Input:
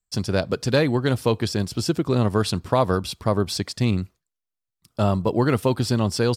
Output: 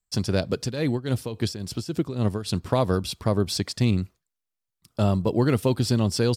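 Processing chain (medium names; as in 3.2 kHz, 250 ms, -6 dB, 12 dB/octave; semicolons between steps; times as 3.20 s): dynamic bell 1.1 kHz, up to -6 dB, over -34 dBFS, Q 0.71; 0.61–2.63 s: tremolo 3.6 Hz, depth 76%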